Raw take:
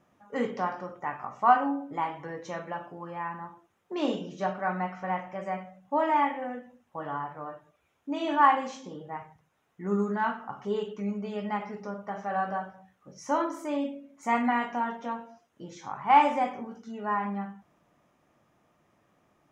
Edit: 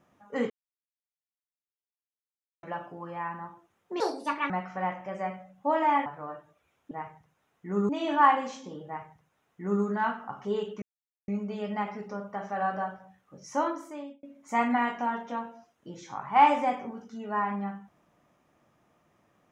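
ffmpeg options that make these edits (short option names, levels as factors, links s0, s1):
-filter_complex "[0:a]asplit=10[s0][s1][s2][s3][s4][s5][s6][s7][s8][s9];[s0]atrim=end=0.5,asetpts=PTS-STARTPTS,afade=t=out:st=0.496:d=0.004:c=hsin[s10];[s1]atrim=start=0.5:end=2.63,asetpts=PTS-STARTPTS,volume=0[s11];[s2]atrim=start=2.63:end=4.004,asetpts=PTS-STARTPTS,afade=t=in:d=0.004:c=hsin[s12];[s3]atrim=start=4:end=4.77,asetpts=PTS-STARTPTS,asetrate=67914,aresample=44100[s13];[s4]atrim=start=4.766:end=6.332[s14];[s5]atrim=start=7.238:end=8.092[s15];[s6]atrim=start=9.058:end=10.042[s16];[s7]atrim=start=8.088:end=11.02,asetpts=PTS-STARTPTS,afade=t=out:st=2.928:d=0.004:c=hsin,apad=pad_dur=0.46[s17];[s8]atrim=start=11.02:end=13.97,asetpts=PTS-STARTPTS,afade=t=in:d=0.004:c=hsin,afade=t=out:st=2.27:d=0.68[s18];[s9]atrim=start=13.97,asetpts=PTS-STARTPTS,afade=t=in:d=0.004:c=hsin[s19];[s10][s11][s12]concat=n=3:v=0:a=1[s20];[s20][s13]acrossfade=d=0.004:c1=hsin:c2=hsin[s21];[s21][s14]acrossfade=d=0.004:c1=hsin:c2=hsin[s22];[s22][s15]acrossfade=d=0.004:c1=hsin:c2=hsin[s23];[s23][s16]acrossfade=d=0.004:c1=hsin:c2=hsin[s24];[s17][s18][s19]concat=n=3:v=0:a=1[s25];[s24][s25]acrossfade=d=0.004:c1=hsin:c2=hsin"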